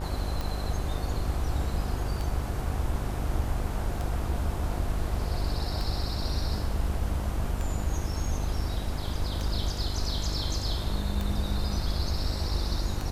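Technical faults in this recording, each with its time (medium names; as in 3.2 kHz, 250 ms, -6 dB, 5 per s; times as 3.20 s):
buzz 50 Hz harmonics 25 -33 dBFS
tick 33 1/3 rpm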